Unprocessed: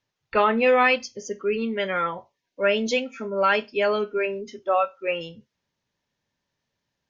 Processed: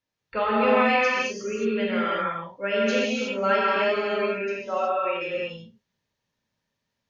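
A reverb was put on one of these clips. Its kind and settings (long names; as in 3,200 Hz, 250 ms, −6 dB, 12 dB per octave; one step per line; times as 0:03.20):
reverb whose tail is shaped and stops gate 390 ms flat, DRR −7 dB
level −8 dB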